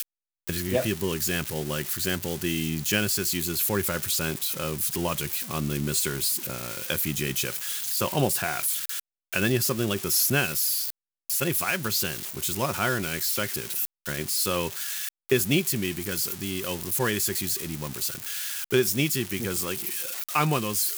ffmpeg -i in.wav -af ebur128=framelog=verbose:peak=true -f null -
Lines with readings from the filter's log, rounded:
Integrated loudness:
  I:         -26.0 LUFS
  Threshold: -36.1 LUFS
Loudness range:
  LRA:         2.3 LU
  Threshold: -46.0 LUFS
  LRA low:   -26.8 LUFS
  LRA high:  -24.5 LUFS
True peak:
  Peak:       -8.7 dBFS